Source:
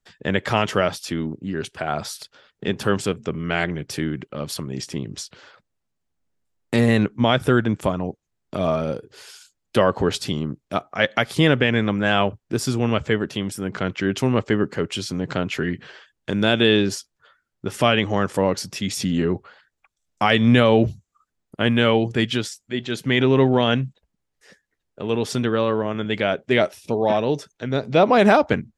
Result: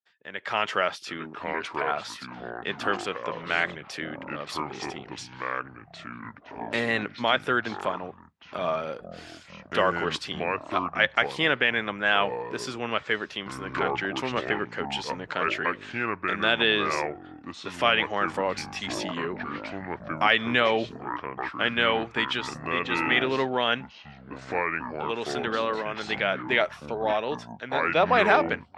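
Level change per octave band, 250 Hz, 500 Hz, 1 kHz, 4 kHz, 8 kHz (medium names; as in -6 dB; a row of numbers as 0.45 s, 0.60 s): -12.0 dB, -7.0 dB, -1.5 dB, -3.0 dB, -10.0 dB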